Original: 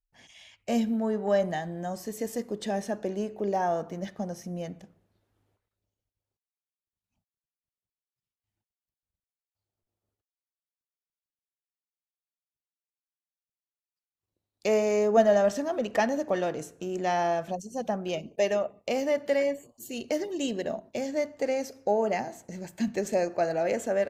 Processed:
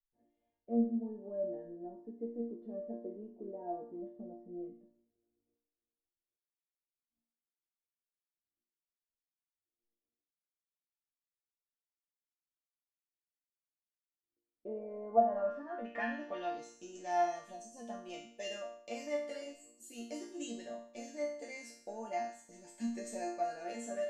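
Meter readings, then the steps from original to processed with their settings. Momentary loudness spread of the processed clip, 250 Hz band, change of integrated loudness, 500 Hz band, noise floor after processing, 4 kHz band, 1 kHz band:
14 LU, -9.5 dB, -10.5 dB, -12.5 dB, under -85 dBFS, -11.5 dB, -7.0 dB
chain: resonator bank A#3 major, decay 0.57 s; low-pass sweep 410 Hz -> 8900 Hz, 14.69–17.13; gain +8 dB

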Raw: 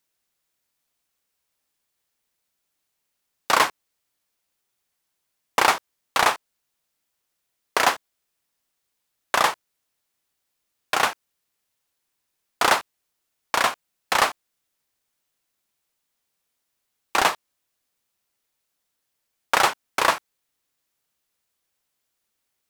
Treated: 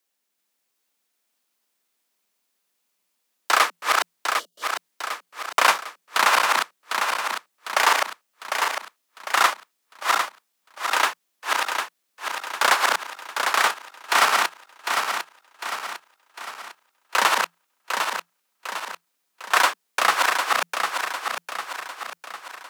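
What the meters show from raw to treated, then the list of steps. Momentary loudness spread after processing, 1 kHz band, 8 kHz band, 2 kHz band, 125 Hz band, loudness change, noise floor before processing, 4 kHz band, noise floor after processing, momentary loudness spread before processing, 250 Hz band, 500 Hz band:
17 LU, +3.0 dB, +3.5 dB, +4.5 dB, under -10 dB, -0.5 dB, -78 dBFS, +3.5 dB, -75 dBFS, 8 LU, -4.0 dB, -0.5 dB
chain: regenerating reverse delay 0.376 s, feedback 70%, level -2.5 dB; frequency shift +170 Hz; spectral gain 4.39–4.63, 700–2800 Hz -19 dB

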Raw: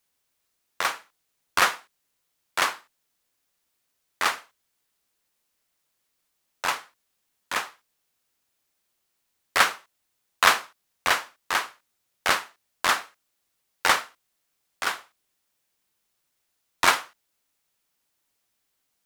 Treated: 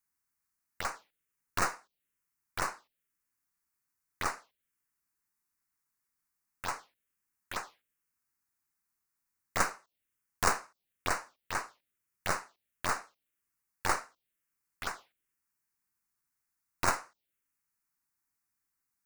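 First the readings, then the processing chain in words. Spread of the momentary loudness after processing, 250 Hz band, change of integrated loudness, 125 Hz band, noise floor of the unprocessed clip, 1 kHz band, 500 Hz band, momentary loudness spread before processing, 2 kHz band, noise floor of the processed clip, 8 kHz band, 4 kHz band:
13 LU, -3.0 dB, -10.5 dB, +4.0 dB, -76 dBFS, -9.0 dB, -6.5 dB, 14 LU, -12.0 dB, -85 dBFS, -7.0 dB, -15.5 dB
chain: tracing distortion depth 0.25 ms; envelope phaser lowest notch 570 Hz, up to 3300 Hz, full sweep at -23.5 dBFS; gain -7 dB

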